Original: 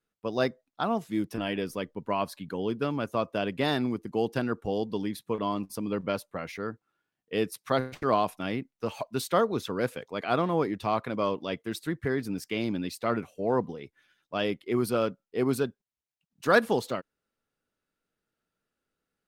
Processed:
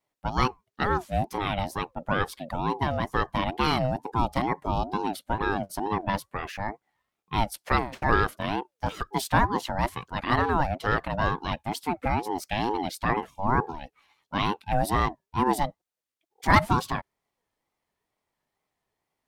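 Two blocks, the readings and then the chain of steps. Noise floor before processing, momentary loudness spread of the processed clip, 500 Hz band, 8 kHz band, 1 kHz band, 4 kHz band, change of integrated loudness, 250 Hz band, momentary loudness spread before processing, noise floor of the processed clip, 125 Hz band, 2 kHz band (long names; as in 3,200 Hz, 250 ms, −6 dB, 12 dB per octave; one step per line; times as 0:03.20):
below −85 dBFS, 9 LU, −3.0 dB, +3.0 dB, +7.0 dB, +2.5 dB, +2.5 dB, −0.5 dB, 8 LU, −85 dBFS, +6.5 dB, +5.0 dB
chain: pitch vibrato 3.4 Hz 30 cents
ring modulator whose carrier an LFO sweeps 510 Hz, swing 25%, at 2.2 Hz
level +5.5 dB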